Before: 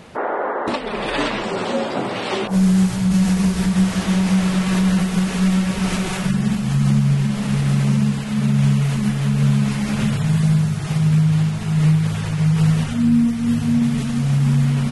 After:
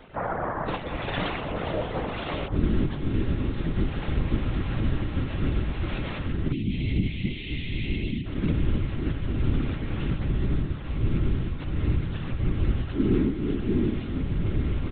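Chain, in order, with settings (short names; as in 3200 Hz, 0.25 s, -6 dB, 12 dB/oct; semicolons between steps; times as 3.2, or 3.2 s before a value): spectral delete 6.52–8.26, 250–1900 Hz; monotone LPC vocoder at 8 kHz 270 Hz; whisperiser; gain -6.5 dB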